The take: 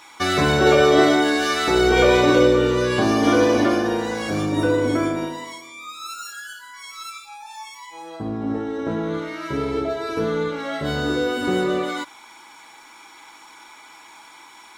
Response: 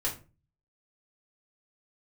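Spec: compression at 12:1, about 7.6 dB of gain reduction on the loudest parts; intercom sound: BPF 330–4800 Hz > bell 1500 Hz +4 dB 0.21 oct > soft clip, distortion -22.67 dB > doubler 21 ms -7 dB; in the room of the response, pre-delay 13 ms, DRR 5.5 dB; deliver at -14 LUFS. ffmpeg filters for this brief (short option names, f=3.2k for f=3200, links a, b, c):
-filter_complex "[0:a]acompressor=threshold=-18dB:ratio=12,asplit=2[a][b];[1:a]atrim=start_sample=2205,adelay=13[c];[b][c]afir=irnorm=-1:irlink=0,volume=-11dB[d];[a][d]amix=inputs=2:normalize=0,highpass=330,lowpass=4.8k,equalizer=f=1.5k:t=o:w=0.21:g=4,asoftclip=threshold=-14dB,asplit=2[e][f];[f]adelay=21,volume=-7dB[g];[e][g]amix=inputs=2:normalize=0,volume=11dB"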